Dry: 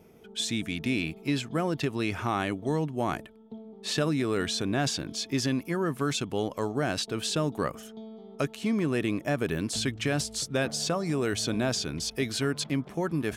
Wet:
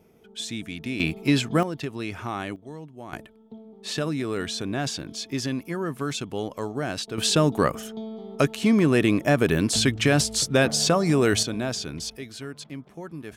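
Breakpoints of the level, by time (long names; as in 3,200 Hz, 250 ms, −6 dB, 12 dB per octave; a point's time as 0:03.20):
−2.5 dB
from 0:01.00 +7.5 dB
from 0:01.63 −2.5 dB
from 0:02.56 −11.5 dB
from 0:03.13 −0.5 dB
from 0:07.18 +8 dB
from 0:11.43 −0.5 dB
from 0:12.17 −8.5 dB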